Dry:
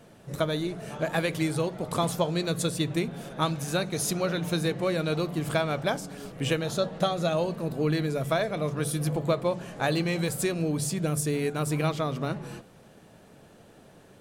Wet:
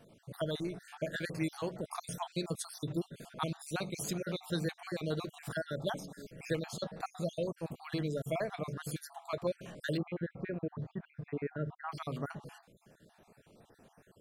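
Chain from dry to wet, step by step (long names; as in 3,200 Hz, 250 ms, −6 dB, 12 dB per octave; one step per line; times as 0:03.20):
time-frequency cells dropped at random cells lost 49%
0:09.97–0:11.92: low-pass filter 1,900 Hz 24 dB per octave
level −6.5 dB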